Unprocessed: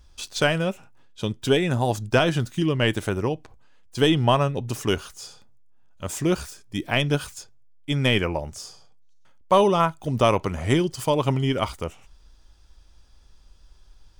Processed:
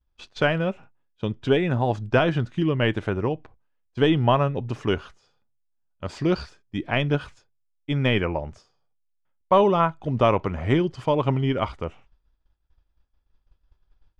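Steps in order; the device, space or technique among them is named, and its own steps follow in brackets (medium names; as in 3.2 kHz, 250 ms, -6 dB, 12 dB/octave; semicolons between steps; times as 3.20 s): hearing-loss simulation (low-pass 2.6 kHz 12 dB/octave; expander -39 dBFS); 6.05–6.49 s: peaking EQ 4.6 kHz +15 dB 0.37 oct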